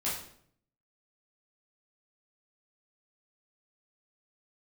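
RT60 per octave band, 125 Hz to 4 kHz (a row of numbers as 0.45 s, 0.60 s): 0.90 s, 0.80 s, 0.70 s, 0.60 s, 0.55 s, 0.50 s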